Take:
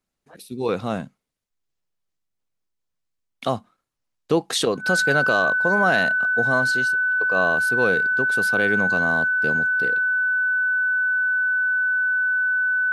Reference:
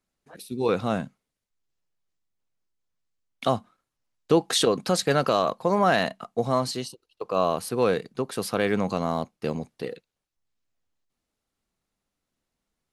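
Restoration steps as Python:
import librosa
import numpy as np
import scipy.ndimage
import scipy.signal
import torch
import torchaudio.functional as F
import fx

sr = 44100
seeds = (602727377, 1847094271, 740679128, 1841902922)

y = fx.notch(x, sr, hz=1500.0, q=30.0)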